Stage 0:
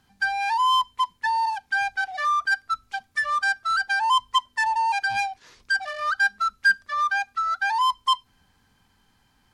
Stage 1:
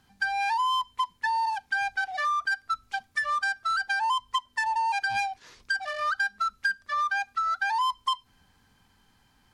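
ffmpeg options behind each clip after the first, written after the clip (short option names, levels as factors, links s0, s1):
-af "acompressor=threshold=0.0631:ratio=6"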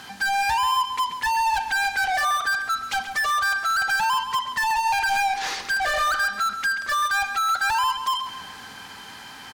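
-filter_complex "[0:a]asplit=2[s0][s1];[s1]highpass=f=720:p=1,volume=56.2,asoftclip=type=tanh:threshold=0.168[s2];[s0][s2]amix=inputs=2:normalize=0,lowpass=f=7100:p=1,volume=0.501,asplit=2[s3][s4];[s4]adelay=135,lowpass=f=3900:p=1,volume=0.376,asplit=2[s5][s6];[s6]adelay=135,lowpass=f=3900:p=1,volume=0.43,asplit=2[s7][s8];[s8]adelay=135,lowpass=f=3900:p=1,volume=0.43,asplit=2[s9][s10];[s10]adelay=135,lowpass=f=3900:p=1,volume=0.43,asplit=2[s11][s12];[s12]adelay=135,lowpass=f=3900:p=1,volume=0.43[s13];[s5][s7][s9][s11][s13]amix=inputs=5:normalize=0[s14];[s3][s14]amix=inputs=2:normalize=0,volume=0.794"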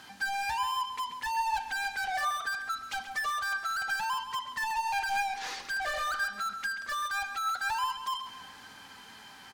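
-af "flanger=delay=3.1:depth=2.2:regen=75:speed=0.69:shape=triangular,volume=0.562"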